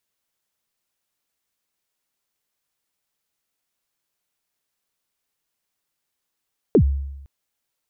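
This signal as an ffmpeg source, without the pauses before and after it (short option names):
-f lavfi -i "aevalsrc='0.376*pow(10,-3*t/0.96)*sin(2*PI*(500*0.08/log(69/500)*(exp(log(69/500)*min(t,0.08)/0.08)-1)+69*max(t-0.08,0)))':d=0.51:s=44100"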